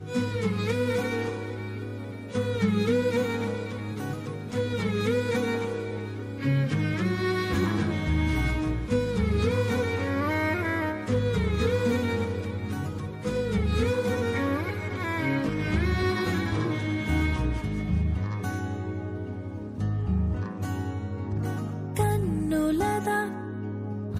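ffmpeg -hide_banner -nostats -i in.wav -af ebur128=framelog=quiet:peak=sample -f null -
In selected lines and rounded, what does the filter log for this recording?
Integrated loudness:
  I:         -28.0 LUFS
  Threshold: -38.0 LUFS
Loudness range:
  LRA:         3.4 LU
  Threshold: -47.9 LUFS
  LRA low:   -29.9 LUFS
  LRA high:  -26.5 LUFS
Sample peak:
  Peak:      -13.1 dBFS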